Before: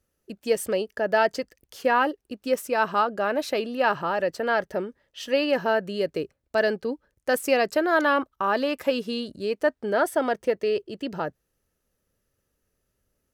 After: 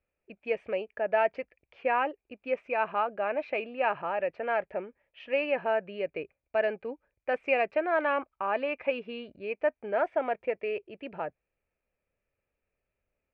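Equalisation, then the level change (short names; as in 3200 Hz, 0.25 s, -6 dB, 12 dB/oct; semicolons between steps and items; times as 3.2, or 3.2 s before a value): ladder low-pass 2500 Hz, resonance 85%; low shelf 110 Hz +8 dB; bell 690 Hz +12 dB 1.6 oct; -3.0 dB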